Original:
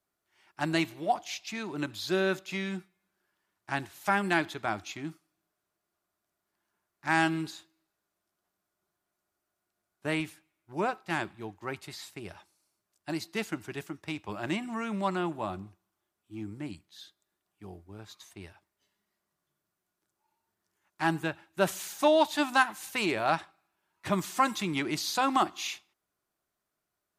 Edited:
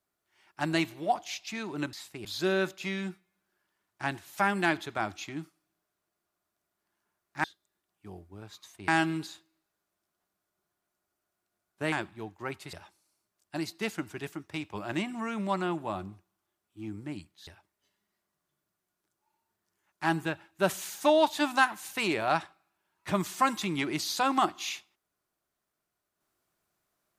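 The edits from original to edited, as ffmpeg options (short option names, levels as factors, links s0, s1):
-filter_complex "[0:a]asplit=8[s0][s1][s2][s3][s4][s5][s6][s7];[s0]atrim=end=1.932[s8];[s1]atrim=start=11.948:end=12.272[s9];[s2]atrim=start=1.928:end=7.122[s10];[s3]atrim=start=17.008:end=18.452[s11];[s4]atrim=start=7.118:end=10.162[s12];[s5]atrim=start=11.138:end=11.952[s13];[s6]atrim=start=12.268:end=17.012[s14];[s7]atrim=start=18.448[s15];[s8][s9]acrossfade=d=0.004:c1=hsin:c2=hsin[s16];[s16][s10]acrossfade=d=0.004:c1=hsin:c2=hsin[s17];[s17][s11]acrossfade=d=0.004:c1=hsin:c2=hsin[s18];[s18][s12]acrossfade=d=0.004:c1=hsin:c2=hsin[s19];[s19][s13]acrossfade=d=0.004:c1=hsin:c2=hsin[s20];[s20][s14]acrossfade=d=0.004:c1=hsin:c2=hsin[s21];[s21][s15]acrossfade=d=0.004:c1=hsin:c2=hsin"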